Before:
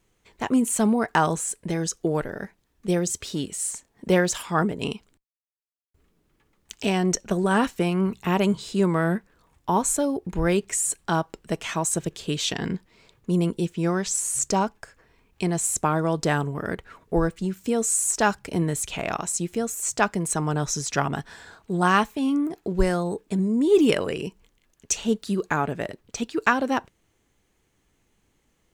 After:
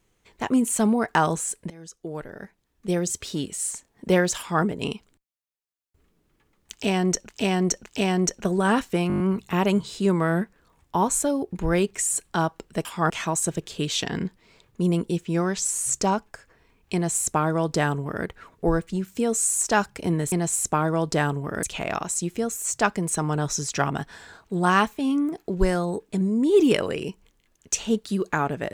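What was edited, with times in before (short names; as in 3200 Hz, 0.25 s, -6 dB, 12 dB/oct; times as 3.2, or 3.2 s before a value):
1.7–3.16 fade in, from -22.5 dB
4.38–4.63 copy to 11.59
6.72–7.29 loop, 3 plays
7.94 stutter 0.02 s, 7 plays
15.43–16.74 copy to 18.81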